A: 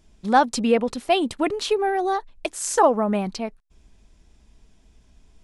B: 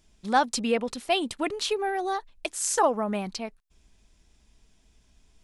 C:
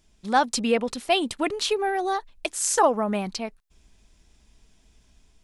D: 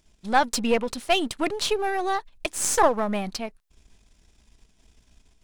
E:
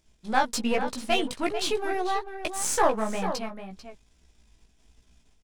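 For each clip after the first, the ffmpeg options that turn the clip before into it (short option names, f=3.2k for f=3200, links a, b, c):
-af "tiltshelf=f=1.5k:g=-3.5,volume=-3.5dB"
-af "dynaudnorm=f=150:g=5:m=3dB"
-af "aeval=exprs='if(lt(val(0),0),0.447*val(0),val(0))':c=same,volume=2.5dB"
-filter_complex "[0:a]flanger=delay=15.5:depth=3.7:speed=1.2,asplit=2[a][b];[b]adelay=443.1,volume=-9dB,highshelf=f=4k:g=-9.97[c];[a][c]amix=inputs=2:normalize=0"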